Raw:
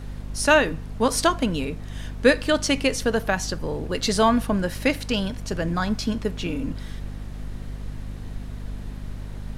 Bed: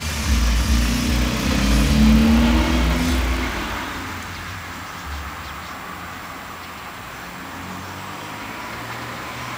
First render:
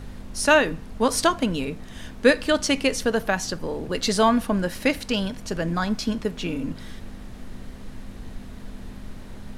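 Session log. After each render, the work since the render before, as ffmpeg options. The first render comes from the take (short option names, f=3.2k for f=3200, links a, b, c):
-af "bandreject=f=50:t=h:w=4,bandreject=f=100:t=h:w=4,bandreject=f=150:t=h:w=4"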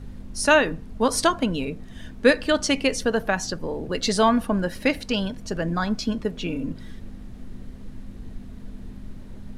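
-af "afftdn=nr=8:nf=-40"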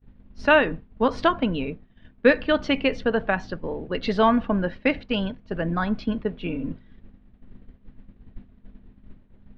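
-af "agate=range=-33dB:threshold=-26dB:ratio=3:detection=peak,lowpass=f=3.3k:w=0.5412,lowpass=f=3.3k:w=1.3066"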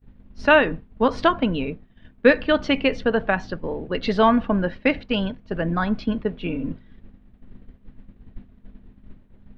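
-af "volume=2dB"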